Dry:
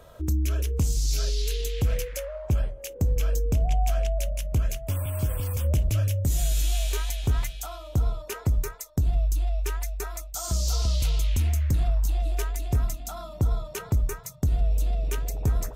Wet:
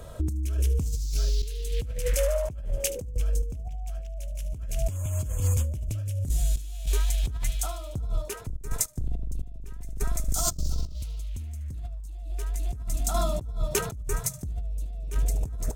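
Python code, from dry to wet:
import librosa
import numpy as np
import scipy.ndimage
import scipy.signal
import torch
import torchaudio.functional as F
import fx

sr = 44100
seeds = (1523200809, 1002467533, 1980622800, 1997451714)

y = fx.octave_divider(x, sr, octaves=2, level_db=3.0, at=(8.39, 10.95))
y = fx.high_shelf(y, sr, hz=5300.0, db=9.0)
y = fx.echo_wet_highpass(y, sr, ms=74, feedback_pct=67, hz=2200.0, wet_db=-15)
y = fx.tremolo_random(y, sr, seeds[0], hz=3.5, depth_pct=85)
y = fx.low_shelf(y, sr, hz=360.0, db=9.0)
y = fx.over_compress(y, sr, threshold_db=-29.0, ratio=-1.0)
y = np.interp(np.arange(len(y)), np.arange(len(y))[::2], y[::2])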